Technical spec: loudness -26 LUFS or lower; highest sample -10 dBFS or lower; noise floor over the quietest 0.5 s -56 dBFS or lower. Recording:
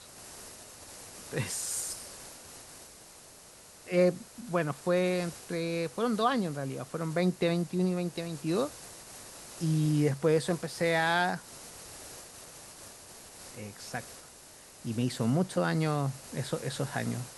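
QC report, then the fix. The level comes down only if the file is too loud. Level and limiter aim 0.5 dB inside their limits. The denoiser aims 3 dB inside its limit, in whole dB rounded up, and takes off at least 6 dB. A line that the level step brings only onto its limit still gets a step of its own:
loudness -31.0 LUFS: pass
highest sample -13.5 dBFS: pass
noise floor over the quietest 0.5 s -53 dBFS: fail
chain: noise reduction 6 dB, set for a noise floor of -53 dBFS

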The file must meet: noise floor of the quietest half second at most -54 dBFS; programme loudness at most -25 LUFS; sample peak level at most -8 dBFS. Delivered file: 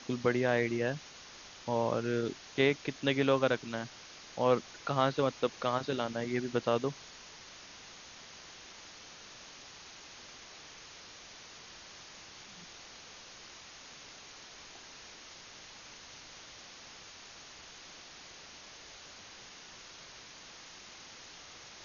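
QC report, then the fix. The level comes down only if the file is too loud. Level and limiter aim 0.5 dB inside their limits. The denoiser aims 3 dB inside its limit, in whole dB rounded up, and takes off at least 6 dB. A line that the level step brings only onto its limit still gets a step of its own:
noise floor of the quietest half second -51 dBFS: fail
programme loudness -32.0 LUFS: pass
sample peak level -13.0 dBFS: pass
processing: noise reduction 6 dB, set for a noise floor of -51 dBFS

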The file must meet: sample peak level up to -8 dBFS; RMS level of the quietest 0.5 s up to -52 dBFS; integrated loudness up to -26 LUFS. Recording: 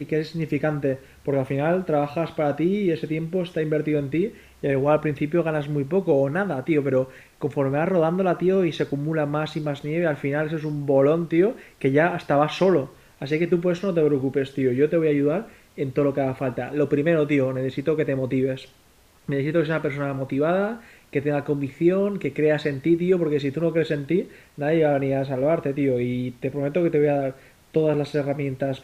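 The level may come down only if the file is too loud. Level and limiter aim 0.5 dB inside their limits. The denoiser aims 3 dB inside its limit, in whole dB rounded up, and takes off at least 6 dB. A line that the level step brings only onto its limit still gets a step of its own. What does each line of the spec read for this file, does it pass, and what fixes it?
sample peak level -7.0 dBFS: fail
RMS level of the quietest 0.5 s -56 dBFS: pass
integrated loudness -23.5 LUFS: fail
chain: trim -3 dB

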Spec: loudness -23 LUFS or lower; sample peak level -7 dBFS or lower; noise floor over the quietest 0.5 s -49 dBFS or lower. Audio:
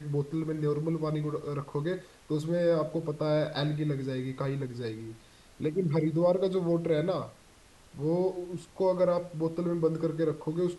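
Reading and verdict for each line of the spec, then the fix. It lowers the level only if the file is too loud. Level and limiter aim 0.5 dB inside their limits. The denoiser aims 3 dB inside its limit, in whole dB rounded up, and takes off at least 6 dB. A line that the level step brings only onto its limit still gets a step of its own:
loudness -30.5 LUFS: pass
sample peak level -15.5 dBFS: pass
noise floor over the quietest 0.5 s -57 dBFS: pass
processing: none needed

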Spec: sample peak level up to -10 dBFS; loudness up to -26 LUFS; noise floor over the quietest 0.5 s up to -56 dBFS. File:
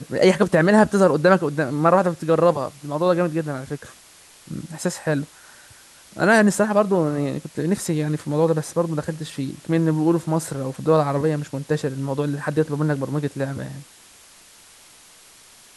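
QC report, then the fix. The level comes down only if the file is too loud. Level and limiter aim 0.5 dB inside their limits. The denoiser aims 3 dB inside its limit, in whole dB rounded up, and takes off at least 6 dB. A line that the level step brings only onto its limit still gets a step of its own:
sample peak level -3.5 dBFS: fail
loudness -21.0 LUFS: fail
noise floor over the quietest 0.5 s -49 dBFS: fail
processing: noise reduction 6 dB, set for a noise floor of -49 dBFS; trim -5.5 dB; peak limiter -10.5 dBFS

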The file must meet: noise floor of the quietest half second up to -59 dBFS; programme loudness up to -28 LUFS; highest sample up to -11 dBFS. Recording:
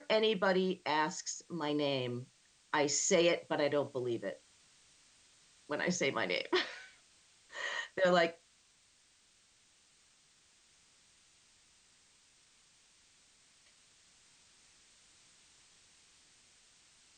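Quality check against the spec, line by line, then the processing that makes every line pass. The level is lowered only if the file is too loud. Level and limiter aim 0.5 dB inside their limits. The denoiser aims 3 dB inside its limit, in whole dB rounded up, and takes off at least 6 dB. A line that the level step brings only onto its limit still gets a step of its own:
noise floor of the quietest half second -68 dBFS: pass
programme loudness -33.5 LUFS: pass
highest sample -16.0 dBFS: pass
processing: none needed

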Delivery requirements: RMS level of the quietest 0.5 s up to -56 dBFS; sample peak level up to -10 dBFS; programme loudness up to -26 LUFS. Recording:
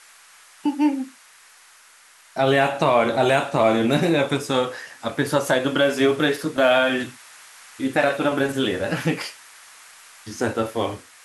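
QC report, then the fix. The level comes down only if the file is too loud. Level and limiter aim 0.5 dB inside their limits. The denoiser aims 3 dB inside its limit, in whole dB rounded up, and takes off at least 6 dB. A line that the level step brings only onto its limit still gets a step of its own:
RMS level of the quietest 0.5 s -51 dBFS: fail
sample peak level -5.0 dBFS: fail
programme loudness -21.5 LUFS: fail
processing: noise reduction 6 dB, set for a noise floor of -51 dBFS; trim -5 dB; peak limiter -10.5 dBFS

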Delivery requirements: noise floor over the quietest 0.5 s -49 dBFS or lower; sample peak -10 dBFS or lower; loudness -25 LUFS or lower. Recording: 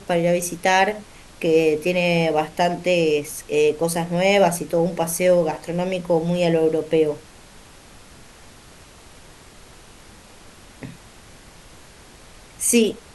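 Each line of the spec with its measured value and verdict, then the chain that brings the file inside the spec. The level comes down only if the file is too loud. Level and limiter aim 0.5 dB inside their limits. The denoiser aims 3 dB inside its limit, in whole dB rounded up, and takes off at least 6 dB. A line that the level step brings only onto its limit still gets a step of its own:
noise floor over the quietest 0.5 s -46 dBFS: fail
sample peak -4.0 dBFS: fail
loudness -20.0 LUFS: fail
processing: trim -5.5 dB; peak limiter -10.5 dBFS

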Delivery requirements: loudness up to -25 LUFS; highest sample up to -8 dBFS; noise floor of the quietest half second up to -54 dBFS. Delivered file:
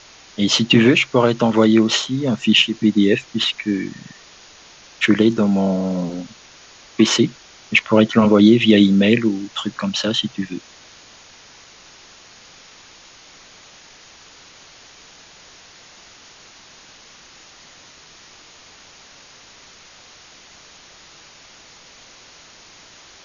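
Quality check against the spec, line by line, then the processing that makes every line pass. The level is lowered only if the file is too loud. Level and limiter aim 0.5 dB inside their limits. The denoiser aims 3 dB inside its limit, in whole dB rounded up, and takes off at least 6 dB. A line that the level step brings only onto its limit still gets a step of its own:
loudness -16.5 LUFS: fail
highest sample -2.0 dBFS: fail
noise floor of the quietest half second -45 dBFS: fail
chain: noise reduction 6 dB, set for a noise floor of -45 dBFS; trim -9 dB

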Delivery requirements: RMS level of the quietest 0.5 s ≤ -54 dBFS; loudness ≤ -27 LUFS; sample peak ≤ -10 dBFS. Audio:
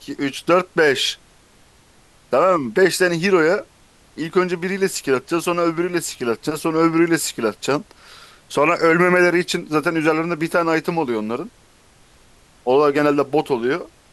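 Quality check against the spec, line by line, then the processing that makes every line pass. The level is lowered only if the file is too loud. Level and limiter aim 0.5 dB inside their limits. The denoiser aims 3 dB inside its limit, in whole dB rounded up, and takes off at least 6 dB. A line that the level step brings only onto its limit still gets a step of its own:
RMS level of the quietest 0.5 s -52 dBFS: fail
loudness -19.0 LUFS: fail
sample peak -5.5 dBFS: fail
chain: trim -8.5 dB

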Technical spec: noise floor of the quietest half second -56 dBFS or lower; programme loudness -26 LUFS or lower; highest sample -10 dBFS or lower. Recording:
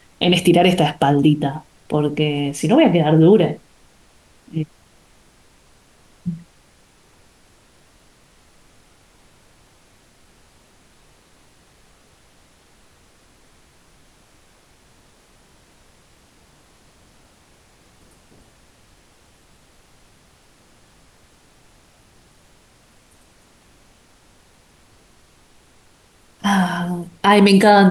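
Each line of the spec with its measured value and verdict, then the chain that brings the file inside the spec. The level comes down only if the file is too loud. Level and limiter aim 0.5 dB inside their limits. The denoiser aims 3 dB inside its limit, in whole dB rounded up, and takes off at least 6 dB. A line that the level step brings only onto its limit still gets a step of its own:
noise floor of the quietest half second -53 dBFS: fail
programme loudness -16.5 LUFS: fail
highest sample -3.0 dBFS: fail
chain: trim -10 dB

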